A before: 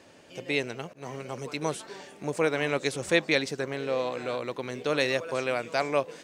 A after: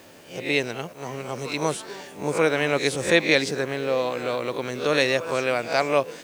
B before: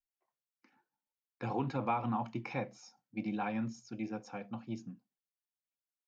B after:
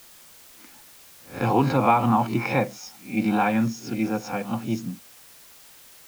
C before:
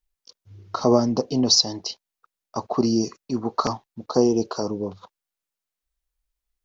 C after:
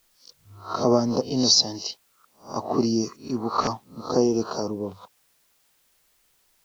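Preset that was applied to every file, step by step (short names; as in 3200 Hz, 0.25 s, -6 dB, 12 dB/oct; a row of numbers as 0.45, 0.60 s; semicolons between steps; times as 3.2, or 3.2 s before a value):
spectral swells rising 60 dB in 0.33 s; added noise white -63 dBFS; match loudness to -24 LUFS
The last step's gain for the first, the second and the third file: +4.5, +13.5, -2.5 dB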